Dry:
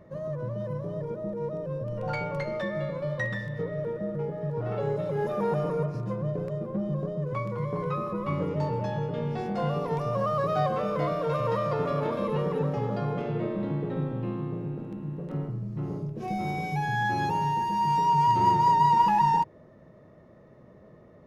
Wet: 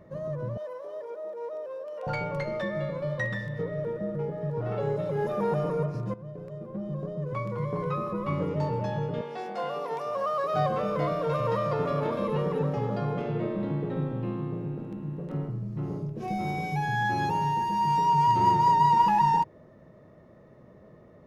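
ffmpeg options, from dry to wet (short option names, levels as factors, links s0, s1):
-filter_complex "[0:a]asettb=1/sr,asplit=3[s0][s1][s2];[s0]atrim=end=0.574[s3];[s1]atrim=start=0.57:end=2.07,asetpts=PTS-STARTPTS,afade=t=in:d=0.004:c=qsin,afade=t=out:st=1.496:d=0.004:c=qsin,highpass=f=480:w=0.5412,highpass=f=480:w=1.3066[s4];[s2]atrim=start=2.066[s5];[s3][s4]acrossfade=d=0.004:c1=hsin:c2=qsin[s6];[s6][s5]acrossfade=d=0.004:c1=qsin:c2=hsin,asettb=1/sr,asplit=3[s7][s8][s9];[s7]atrim=end=9.214[s10];[s8]atrim=start=9.21:end=10.54,asetpts=PTS-STARTPTS,afade=t=in:d=0.004:c=qsin,afade=t=out:st=1.326:d=0.004:c=qsin,highpass=460[s11];[s9]atrim=start=10.536[s12];[s10][s11]acrossfade=d=0.004:c1=hsin:c2=qsin[s13];[s13][s12]acrossfade=d=0.004:c1=qsin:c2=hsin,asplit=2[s14][s15];[s14]atrim=end=6.14,asetpts=PTS-STARTPTS,afade=t=out:st=6.136:d=0.004:c=hsin:silence=0.211349[s16];[s15]atrim=start=6.14,asetpts=PTS-STARTPTS,afade=t=in:d=1.44:silence=0.211349[s17];[s16][s17]concat=n=2:v=0:a=1"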